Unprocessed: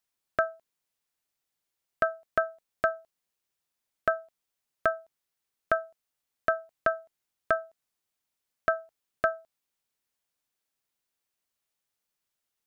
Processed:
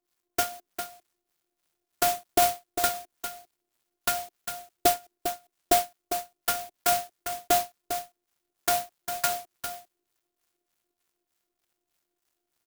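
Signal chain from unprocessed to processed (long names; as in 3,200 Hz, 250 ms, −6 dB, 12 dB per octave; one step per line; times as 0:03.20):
parametric band 350 Hz +12 dB 0.94 octaves
in parallel at +2.5 dB: brickwall limiter −23 dBFS, peak gain reduction 14 dB
on the sum: two-band tremolo in antiphase 3.3 Hz, depth 100%, crossover 960 Hz
phases set to zero 354 Hz
on a send: single-tap delay 401 ms −8.5 dB
on the sum: converter with an unsteady clock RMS 0.13 ms
level +4.5 dB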